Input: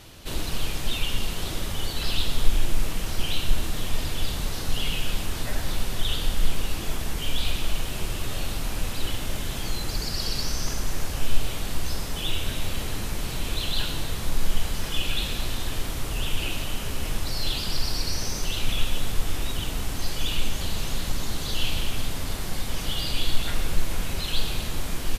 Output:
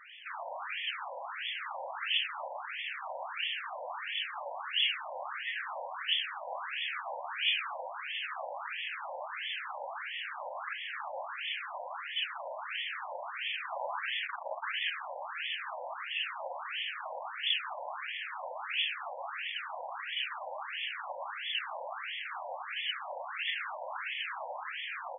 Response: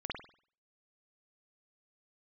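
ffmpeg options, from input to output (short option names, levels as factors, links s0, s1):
-filter_complex "[0:a]asettb=1/sr,asplit=3[s0][s1][s2];[s0]atrim=end=6.484[s3];[s1]atrim=start=6.48:end=7.75,asetpts=PTS-STARTPTS,afade=t=in:d=0.004:c=qsin,afade=t=out:st=1.266:d=0.004:c=qsin,asplit=2[s4][s5];[s5]adelay=14,volume=0.668[s6];[s4][s6]amix=inputs=2:normalize=0,atrim=end_sample=56007[s7];[s2]atrim=start=7.746[s8];[s3][s7]acrossfade=d=0.004:c1=hsin:c2=qsin[s9];[s9][s8]acrossfade=d=0.004:c1=qsin:c2=hsin,asettb=1/sr,asplit=3[s10][s11][s12];[s10]atrim=end=13.724[s13];[s11]atrim=start=13.72:end=14.9,asetpts=PTS-STARTPTS,afade=t=in:d=0.004:c=qsin,afade=t=out:st=1.176:d=0.004:c=qsin,aeval=exprs='0.355*(cos(1*acos(clip(val(0)/0.355,-1,1)))-cos(1*PI/2))+0.0501*(cos(5*acos(clip(val(0)/0.355,-1,1)))-cos(5*PI/2))':c=same[s14];[s12]atrim=start=14.896[s15];[s13][s14]acrossfade=d=0.004:c1=hsin:c2=qsin[s16];[s16][s15]acrossfade=d=0.004:c1=qsin:c2=hsin,afftfilt=real='re*between(b*sr/1024,700*pow(2500/700,0.5+0.5*sin(2*PI*1.5*pts/sr))/1.41,700*pow(2500/700,0.5+0.5*sin(2*PI*1.5*pts/sr))*1.41)':imag='im*between(b*sr/1024,700*pow(2500/700,0.5+0.5*sin(2*PI*1.5*pts/sr))/1.41,700*pow(2500/700,0.5+0.5*sin(2*PI*1.5*pts/sr))*1.41)':win_size=1024:overlap=0.75,volume=1.78"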